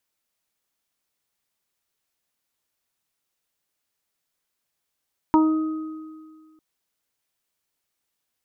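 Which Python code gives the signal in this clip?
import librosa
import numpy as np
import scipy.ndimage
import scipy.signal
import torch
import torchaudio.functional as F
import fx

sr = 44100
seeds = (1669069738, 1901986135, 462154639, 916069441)

y = fx.additive(sr, length_s=1.25, hz=314.0, level_db=-13, upper_db=(-17.5, -1.0, -15.0), decay_s=1.85, upper_decays_s=(0.96, 0.28, 1.93))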